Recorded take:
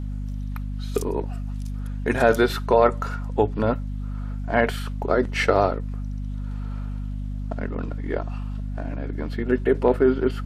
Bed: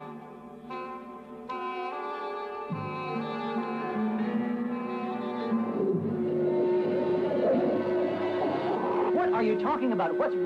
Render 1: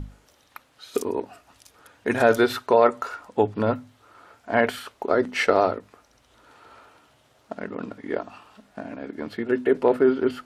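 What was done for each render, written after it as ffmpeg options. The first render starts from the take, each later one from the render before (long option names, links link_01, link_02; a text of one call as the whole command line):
ffmpeg -i in.wav -af "bandreject=frequency=50:width_type=h:width=6,bandreject=frequency=100:width_type=h:width=6,bandreject=frequency=150:width_type=h:width=6,bandreject=frequency=200:width_type=h:width=6,bandreject=frequency=250:width_type=h:width=6" out.wav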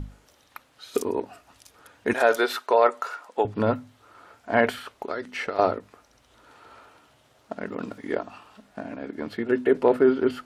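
ffmpeg -i in.wav -filter_complex "[0:a]asettb=1/sr,asplit=3[link_01][link_02][link_03];[link_01]atrim=end=2.134[link_04];[link_02]atrim=start=2.13:end=3.45,asetpts=PTS-STARTPTS,afade=type=in:duration=0.004:curve=qsin,afade=type=out:start_time=1.316:duration=0.004:curve=qsin,highpass=470[link_05];[link_03]atrim=start=3.446[link_06];[link_04][link_05]acrossfade=duration=0.004:curve1=hsin:curve2=qsin[link_07];[link_07][link_06]acrossfade=duration=0.004:curve1=qsin:curve2=hsin,asettb=1/sr,asplit=3[link_08][link_09][link_10];[link_08]atrim=end=4.734[link_11];[link_09]atrim=start=4.73:end=5.59,asetpts=PTS-STARTPTS,afade=type=in:duration=0.004:curve=qsin,afade=type=out:start_time=0.856:duration=0.004:curve=qsin,acrossover=split=1400|3400[link_12][link_13][link_14];[link_12]acompressor=threshold=-32dB:ratio=4[link_15];[link_13]acompressor=threshold=-35dB:ratio=4[link_16];[link_14]acompressor=threshold=-47dB:ratio=4[link_17];[link_15][link_16][link_17]amix=inputs=3:normalize=0[link_18];[link_10]atrim=start=5.586[link_19];[link_11][link_18]acrossfade=duration=0.004:curve1=hsin:curve2=qsin[link_20];[link_20][link_19]acrossfade=duration=0.004:curve1=qsin:curve2=hsin,asettb=1/sr,asplit=3[link_21][link_22][link_23];[link_21]atrim=end=7.664[link_24];[link_22]atrim=start=7.66:end=8.15,asetpts=PTS-STARTPTS,afade=type=in:duration=0.004:curve=qsin,afade=type=out:start_time=0.486:duration=0.004:curve=qsin,highshelf=frequency=5200:gain=9.5[link_25];[link_23]atrim=start=8.146[link_26];[link_24][link_25]acrossfade=duration=0.004:curve1=hsin:curve2=qsin[link_27];[link_27][link_26]acrossfade=duration=0.004:curve1=qsin:curve2=hsin" out.wav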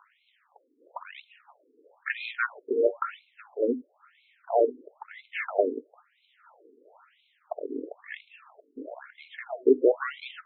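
ffmpeg -i in.wav -filter_complex "[0:a]asplit=2[link_01][link_02];[link_02]acrusher=samples=34:mix=1:aa=0.000001:lfo=1:lforange=54.4:lforate=0.53,volume=-7dB[link_03];[link_01][link_03]amix=inputs=2:normalize=0,afftfilt=real='re*between(b*sr/1024,330*pow(3000/330,0.5+0.5*sin(2*PI*1*pts/sr))/1.41,330*pow(3000/330,0.5+0.5*sin(2*PI*1*pts/sr))*1.41)':imag='im*between(b*sr/1024,330*pow(3000/330,0.5+0.5*sin(2*PI*1*pts/sr))/1.41,330*pow(3000/330,0.5+0.5*sin(2*PI*1*pts/sr))*1.41)':win_size=1024:overlap=0.75" out.wav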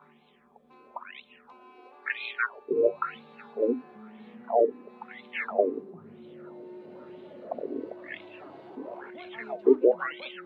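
ffmpeg -i in.wav -i bed.wav -filter_complex "[1:a]volume=-19dB[link_01];[0:a][link_01]amix=inputs=2:normalize=0" out.wav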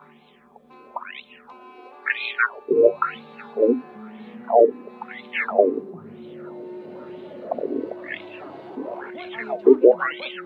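ffmpeg -i in.wav -af "volume=8dB,alimiter=limit=-2dB:level=0:latency=1" out.wav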